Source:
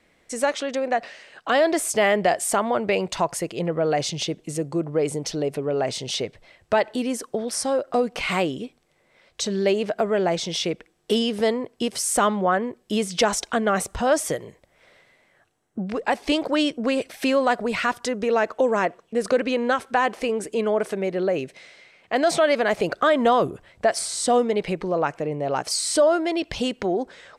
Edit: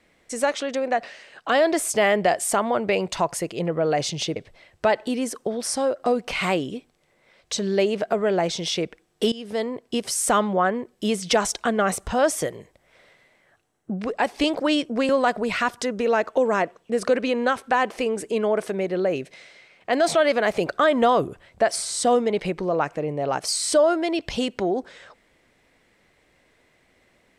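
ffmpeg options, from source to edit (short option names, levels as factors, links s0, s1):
-filter_complex "[0:a]asplit=4[s0][s1][s2][s3];[s0]atrim=end=4.362[s4];[s1]atrim=start=6.238:end=11.2,asetpts=PTS-STARTPTS,afade=t=out:st=4.958:d=0.004:c=hsin:silence=0.11885[s5];[s2]atrim=start=11.2:end=16.972,asetpts=PTS-STARTPTS,afade=t=in:d=0.76:c=qsin:silence=0.11885[s6];[s3]atrim=start=17.318[s7];[s5][s6]concat=n=2:v=0:a=1[s8];[s4][s8]acrossfade=d=0.004:c1=hsin:c2=hsin[s9];[s9][s7]acrossfade=d=0.004:c1=hsin:c2=hsin"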